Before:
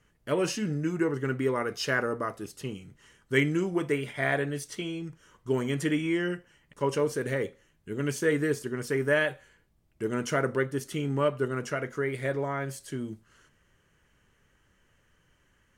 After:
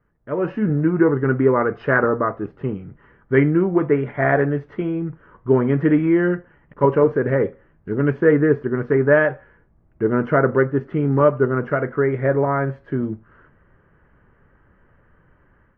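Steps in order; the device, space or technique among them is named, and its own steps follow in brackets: action camera in a waterproof case (low-pass 1.6 kHz 24 dB/octave; level rider gain up to 12 dB; AAC 48 kbps 44.1 kHz)

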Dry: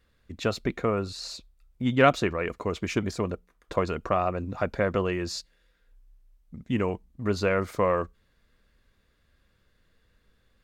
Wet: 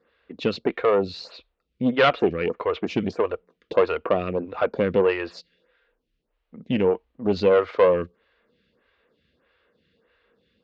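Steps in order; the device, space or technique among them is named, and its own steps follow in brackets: vibe pedal into a guitar amplifier (lamp-driven phase shifter 1.6 Hz; valve stage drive 22 dB, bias 0.5; cabinet simulation 110–4200 Hz, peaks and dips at 110 Hz -10 dB, 470 Hz +7 dB, 2.8 kHz +4 dB); trim +9 dB

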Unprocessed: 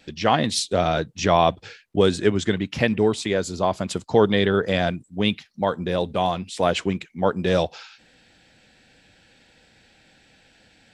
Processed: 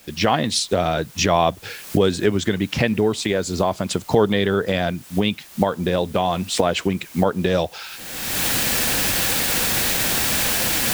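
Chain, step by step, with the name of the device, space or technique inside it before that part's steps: cheap recorder with automatic gain (white noise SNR 28 dB; recorder AGC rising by 38 dB/s)

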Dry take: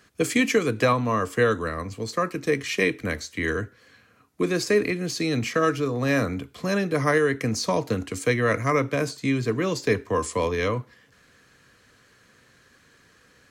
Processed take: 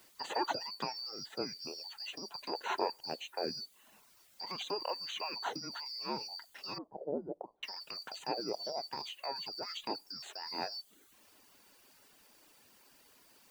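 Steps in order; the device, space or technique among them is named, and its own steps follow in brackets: split-band scrambled radio (four frequency bands reordered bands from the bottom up 2341; band-pass 370–3200 Hz; white noise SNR 27 dB); reverb removal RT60 0.7 s; 6.78–7.63 s: inverse Chebyshev low-pass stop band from 2.6 kHz, stop band 60 dB; de-esser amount 100%; trim -3.5 dB

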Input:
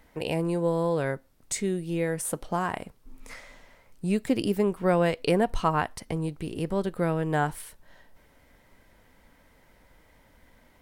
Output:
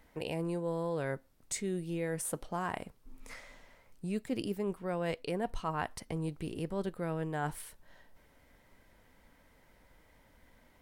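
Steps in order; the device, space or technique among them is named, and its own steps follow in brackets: compression on the reversed sound (reverse; compression 6:1, threshold -26 dBFS, peak gain reduction 9 dB; reverse); trim -4.5 dB

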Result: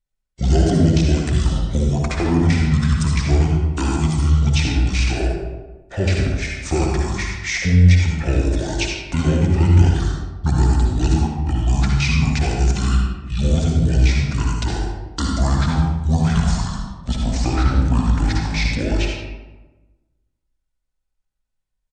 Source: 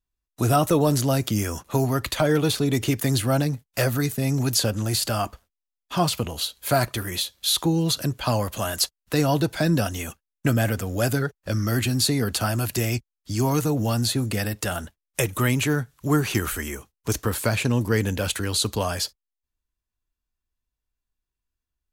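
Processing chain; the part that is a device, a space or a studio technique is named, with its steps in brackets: monster voice (pitch shift -10.5 st; bass shelf 130 Hz +7 dB; delay 79 ms -11.5 dB; reverberation RT60 1.2 s, pre-delay 53 ms, DRR -0.5 dB); trim -1.5 dB

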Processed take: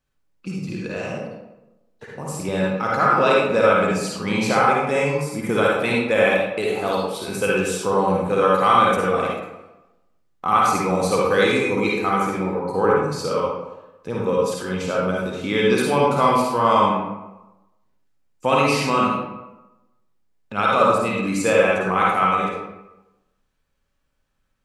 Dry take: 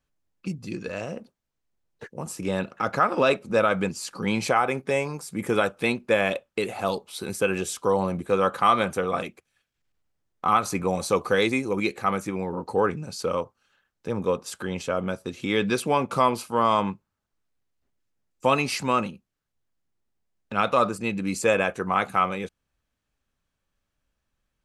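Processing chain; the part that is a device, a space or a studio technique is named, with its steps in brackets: bathroom (reverberation RT60 1.0 s, pre-delay 47 ms, DRR -4 dB)

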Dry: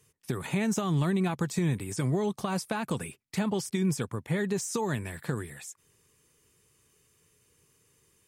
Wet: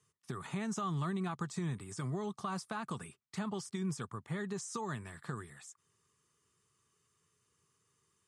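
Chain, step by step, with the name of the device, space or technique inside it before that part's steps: car door speaker (cabinet simulation 86–9500 Hz, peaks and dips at 290 Hz -5 dB, 520 Hz -7 dB, 1.2 kHz +9 dB, 2.4 kHz -5 dB); trim -8.5 dB

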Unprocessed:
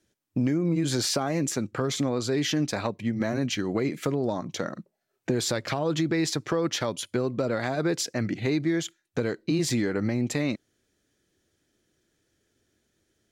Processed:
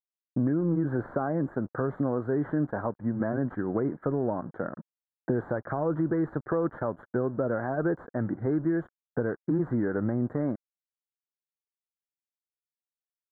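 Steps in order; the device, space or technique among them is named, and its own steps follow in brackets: early transistor amplifier (crossover distortion -47.5 dBFS; slew-rate limiter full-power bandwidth 72 Hz); elliptic low-pass 1.6 kHz, stop band 40 dB

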